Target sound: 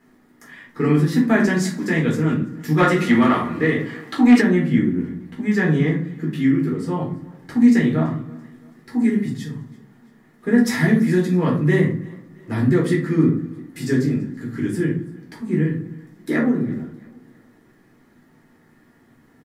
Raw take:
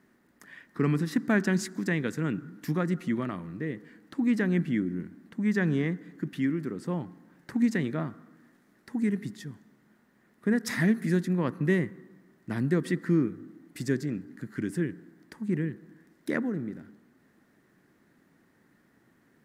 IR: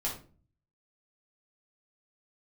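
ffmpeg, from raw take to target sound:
-filter_complex "[0:a]aecho=1:1:334|668|1002:0.0631|0.029|0.0134[link_01];[1:a]atrim=start_sample=2205[link_02];[link_01][link_02]afir=irnorm=-1:irlink=0,asplit=3[link_03][link_04][link_05];[link_03]afade=type=out:start_time=2.77:duration=0.02[link_06];[link_04]asplit=2[link_07][link_08];[link_08]highpass=frequency=720:poles=1,volume=18dB,asoftclip=type=tanh:threshold=-6.5dB[link_09];[link_07][link_09]amix=inputs=2:normalize=0,lowpass=frequency=7600:poles=1,volume=-6dB,afade=type=in:start_time=2.77:duration=0.02,afade=type=out:start_time=4.4:duration=0.02[link_10];[link_05]afade=type=in:start_time=4.4:duration=0.02[link_11];[link_06][link_10][link_11]amix=inputs=3:normalize=0,volume=4.5dB"

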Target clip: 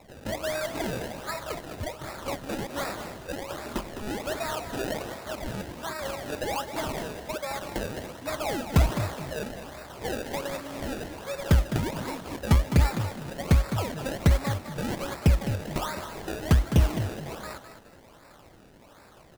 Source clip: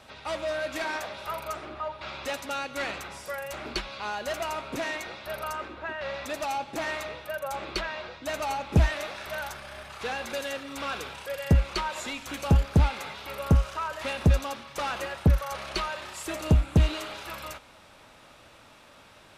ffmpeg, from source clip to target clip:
ffmpeg -i in.wav -filter_complex "[0:a]acrusher=samples=28:mix=1:aa=0.000001:lfo=1:lforange=28:lforate=1.3,asplit=4[link_01][link_02][link_03][link_04];[link_02]adelay=208,afreqshift=42,volume=-10dB[link_05];[link_03]adelay=416,afreqshift=84,volume=-20.5dB[link_06];[link_04]adelay=624,afreqshift=126,volume=-30.9dB[link_07];[link_01][link_05][link_06][link_07]amix=inputs=4:normalize=0" out.wav

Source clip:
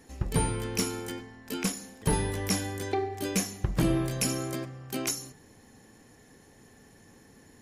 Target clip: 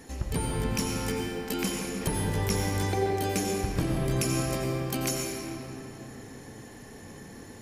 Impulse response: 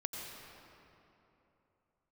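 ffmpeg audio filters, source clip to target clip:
-filter_complex "[0:a]acompressor=threshold=-36dB:ratio=4[link_01];[1:a]atrim=start_sample=2205[link_02];[link_01][link_02]afir=irnorm=-1:irlink=0,volume=9dB"

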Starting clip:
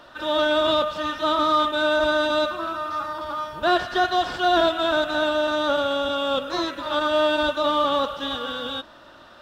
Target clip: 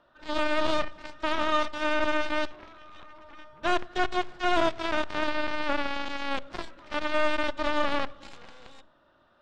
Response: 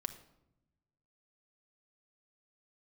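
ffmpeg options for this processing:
-filter_complex "[0:a]aeval=exprs='0.422*(cos(1*acos(clip(val(0)/0.422,-1,1)))-cos(1*PI/2))+0.0211*(cos(3*acos(clip(val(0)/0.422,-1,1)))-cos(3*PI/2))+0.0266*(cos(4*acos(clip(val(0)/0.422,-1,1)))-cos(4*PI/2))+0.0668*(cos(7*acos(clip(val(0)/0.422,-1,1)))-cos(7*PI/2))':channel_layout=same,aemphasis=mode=reproduction:type=75fm,asplit=2[link_01][link_02];[1:a]atrim=start_sample=2205,lowshelf=frequency=210:gain=9.5[link_03];[link_02][link_03]afir=irnorm=-1:irlink=0,volume=-9.5dB[link_04];[link_01][link_04]amix=inputs=2:normalize=0,volume=-6.5dB"

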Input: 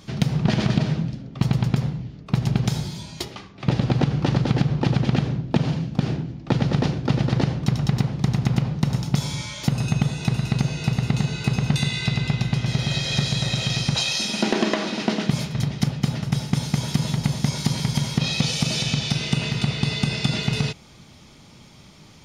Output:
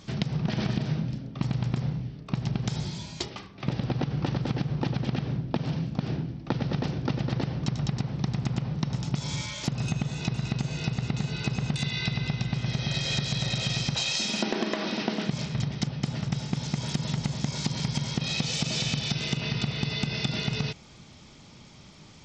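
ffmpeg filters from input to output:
ffmpeg -i in.wav -filter_complex "[0:a]acompressor=threshold=-21dB:ratio=10,asettb=1/sr,asplit=3[link_01][link_02][link_03];[link_01]atrim=end=0.544[link_04];[link_02]atrim=start=0.54:end=2.34,asetpts=PTS-STARTPTS,afade=type=in:duration=0.004:curve=qsin,afade=type=out:start_time=1.796:duration=0.004:curve=qsin,asplit=2[link_05][link_06];[link_06]adelay=33,volume=-9.5dB[link_07];[link_05][link_07]amix=inputs=2:normalize=0,atrim=end_sample=79380[link_08];[link_03]atrim=start=2.336[link_09];[link_04][link_08]acrossfade=duration=0.004:curve1=hsin:curve2=qsin[link_10];[link_10][link_09]acrossfade=duration=0.004:curve1=qsin:curve2=hsin,volume=-2.5dB" -ar 32000 -c:a sbc -b:a 64k out.sbc

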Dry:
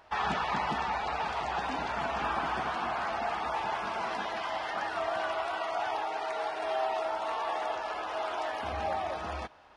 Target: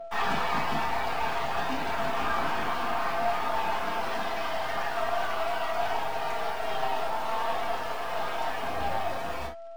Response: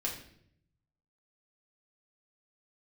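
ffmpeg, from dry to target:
-filter_complex "[0:a]acrusher=bits=7:mix=0:aa=0.5,aeval=exprs='val(0)+0.0112*sin(2*PI*670*n/s)':channel_layout=same,aeval=exprs='0.126*(cos(1*acos(clip(val(0)/0.126,-1,1)))-cos(1*PI/2))+0.00708*(cos(8*acos(clip(val(0)/0.126,-1,1)))-cos(8*PI/2))':channel_layout=same[link_01];[1:a]atrim=start_sample=2205,atrim=end_sample=3528[link_02];[link_01][link_02]afir=irnorm=-1:irlink=0"

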